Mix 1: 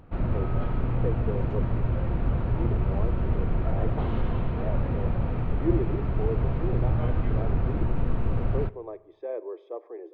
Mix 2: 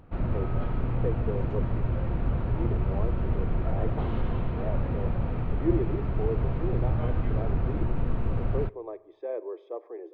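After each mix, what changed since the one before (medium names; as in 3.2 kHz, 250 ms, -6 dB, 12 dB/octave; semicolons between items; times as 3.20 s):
background: send -8.5 dB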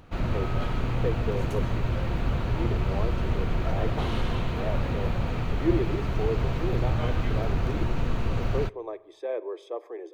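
master: remove tape spacing loss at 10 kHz 43 dB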